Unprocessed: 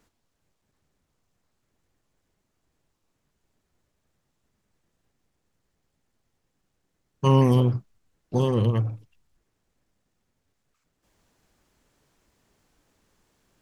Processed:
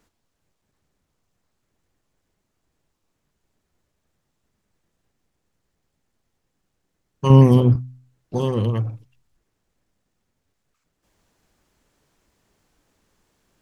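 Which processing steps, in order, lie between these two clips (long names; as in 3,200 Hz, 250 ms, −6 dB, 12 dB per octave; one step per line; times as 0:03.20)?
hum removal 127 Hz, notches 2
0:07.30–0:07.76: low-shelf EQ 360 Hz +9.5 dB
level +1 dB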